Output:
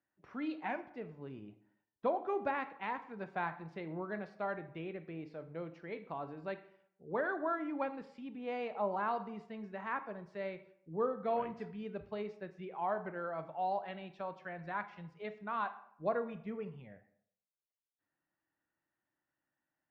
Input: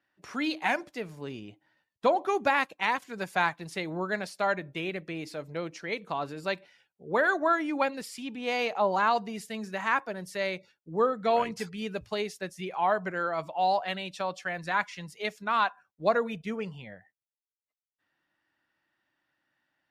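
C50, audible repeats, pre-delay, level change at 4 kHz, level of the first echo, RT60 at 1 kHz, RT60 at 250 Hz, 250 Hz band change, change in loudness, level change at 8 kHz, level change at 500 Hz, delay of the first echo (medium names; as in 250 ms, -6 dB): 13.5 dB, no echo, 19 ms, -20.0 dB, no echo, 0.70 s, 0.65 s, -7.5 dB, -10.0 dB, under -30 dB, -8.5 dB, no echo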